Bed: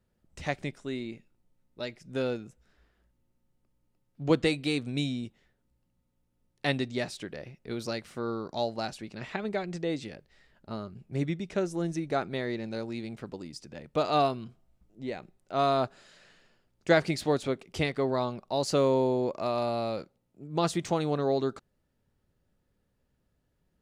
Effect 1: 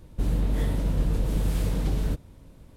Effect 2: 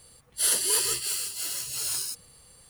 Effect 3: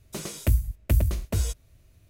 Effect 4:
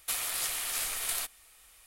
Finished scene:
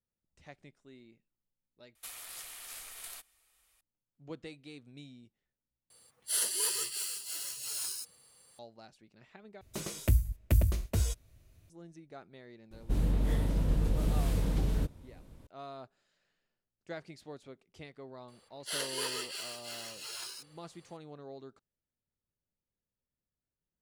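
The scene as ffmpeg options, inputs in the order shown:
ffmpeg -i bed.wav -i cue0.wav -i cue1.wav -i cue2.wav -i cue3.wav -filter_complex "[2:a]asplit=2[link_01][link_02];[0:a]volume=-20dB[link_03];[link_01]highpass=frequency=320:poles=1[link_04];[link_02]acrossover=split=320 4600:gain=0.141 1 0.178[link_05][link_06][link_07];[link_05][link_06][link_07]amix=inputs=3:normalize=0[link_08];[link_03]asplit=4[link_09][link_10][link_11][link_12];[link_09]atrim=end=1.954[link_13];[4:a]atrim=end=1.86,asetpts=PTS-STARTPTS,volume=-13dB[link_14];[link_10]atrim=start=3.806:end=5.904[link_15];[link_04]atrim=end=2.69,asetpts=PTS-STARTPTS,volume=-7dB[link_16];[link_11]atrim=start=8.586:end=9.614[link_17];[3:a]atrim=end=2.09,asetpts=PTS-STARTPTS,volume=-4dB[link_18];[link_12]atrim=start=11.696[link_19];[1:a]atrim=end=2.76,asetpts=PTS-STARTPTS,volume=-4dB,afade=type=in:duration=0.004:curve=hsin,afade=type=out:start_time=2.756:duration=0.004:curve=hsin,adelay=12710[link_20];[link_08]atrim=end=2.69,asetpts=PTS-STARTPTS,volume=-3.5dB,afade=type=in:duration=0.004:curve=hsin,afade=type=out:start_time=2.686:duration=0.004:curve=hsin,adelay=806148S[link_21];[link_13][link_14]acrossfade=duration=0.004:curve1=hsin:curve2=hsin[link_22];[link_22][link_15]acrossfade=duration=0.004:curve1=hsin:curve2=hsin[link_23];[link_23][link_16]acrossfade=duration=0.004:curve1=hsin:curve2=hsin[link_24];[link_24][link_17]acrossfade=duration=0.004:curve1=hsin:curve2=hsin[link_25];[link_25][link_18]acrossfade=duration=0.004:curve1=hsin:curve2=hsin[link_26];[link_26][link_19]acrossfade=duration=0.004:curve1=hsin:curve2=hsin[link_27];[link_27][link_20][link_21]amix=inputs=3:normalize=0" out.wav

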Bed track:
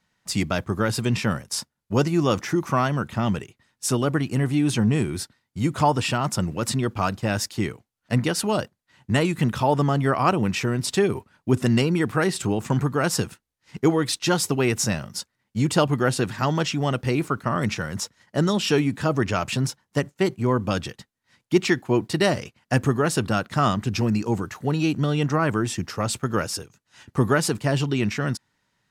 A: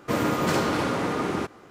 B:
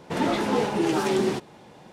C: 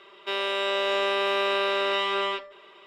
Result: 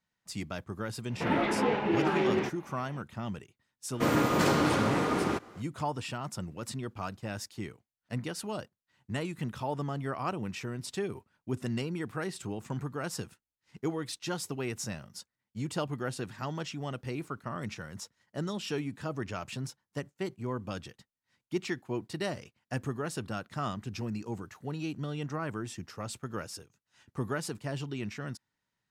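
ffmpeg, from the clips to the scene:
ffmpeg -i bed.wav -i cue0.wav -i cue1.wav -filter_complex "[0:a]volume=-13.5dB[link_01];[2:a]lowpass=frequency=2400:width_type=q:width=1.6,atrim=end=1.92,asetpts=PTS-STARTPTS,volume=-4.5dB,afade=type=in:duration=0.004:curve=hsin,afade=type=out:start_time=1.916:duration=0.004:curve=hsin,adelay=1100[link_02];[1:a]atrim=end=1.7,asetpts=PTS-STARTPTS,volume=-2dB,afade=type=in:duration=0.004:curve=hsin,afade=type=out:start_time=1.696:duration=0.004:curve=hsin,adelay=3920[link_03];[link_01][link_02][link_03]amix=inputs=3:normalize=0" out.wav

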